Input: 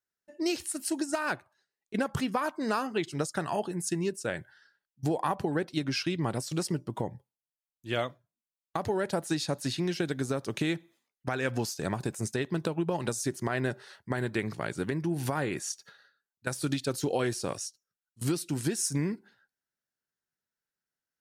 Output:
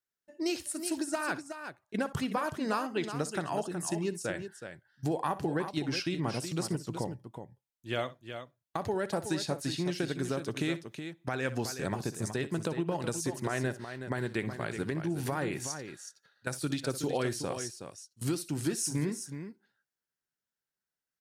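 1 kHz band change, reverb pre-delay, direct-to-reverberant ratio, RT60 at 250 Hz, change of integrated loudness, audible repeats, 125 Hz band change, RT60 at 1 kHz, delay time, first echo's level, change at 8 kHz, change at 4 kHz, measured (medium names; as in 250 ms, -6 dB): -2.0 dB, no reverb, no reverb, no reverb, -2.0 dB, 2, -2.0 dB, no reverb, 62 ms, -16.5 dB, -2.0 dB, -2.0 dB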